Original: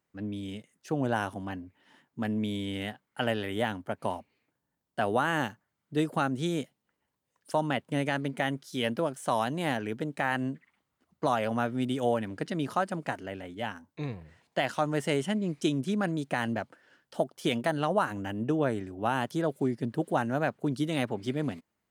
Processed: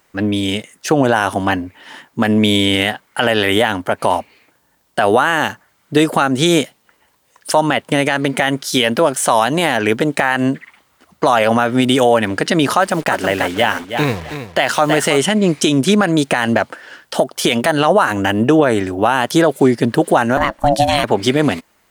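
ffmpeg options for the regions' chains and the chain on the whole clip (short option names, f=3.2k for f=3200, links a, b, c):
-filter_complex "[0:a]asettb=1/sr,asplit=3[a][b][c];[a]atrim=end=12.794[d];[b]atrim=start=12.79:end=15.18,asetpts=PTS-STARTPTS,afade=t=in:d=0.004:c=qsin,afade=t=out:st=2.386:d=0.004:c=qsin,acrusher=bits=8:mix=0:aa=0.5,aecho=1:1:321|642|963:0.282|0.0592|0.0124,atrim=end_sample=105399[e];[c]atrim=start=15.176[f];[d][e]acrossfade=d=0.004:c1=hsin:c2=qsin[g];[g][f]acrossfade=d=0.004:c1=qsin:c2=hsin,asettb=1/sr,asplit=3[h][i][j];[h]atrim=end=20.374[k];[i]atrim=start=20.37:end=21.04,asetpts=PTS-STARTPTS,afade=t=in:d=0.004:c=qsin,afade=t=out:st=0.666:d=0.004:c=qsin,aecho=1:1:0.8:0.39,atrim=end_sample=29547,aeval=exprs='val(0)*sin(2*PI*430*n/s)':c=same[l];[j]atrim=start=21.036[m];[k][l]acrossfade=d=0.004:c1=hsin:c2=qsin[n];[n][m]acrossfade=d=0.004:c1=qsin:c2=hsin,equalizer=f=140:w=0.44:g=-10,acompressor=threshold=-33dB:ratio=2,alimiter=level_in=26.5dB:limit=-1dB:release=50:level=0:latency=1,volume=-1dB"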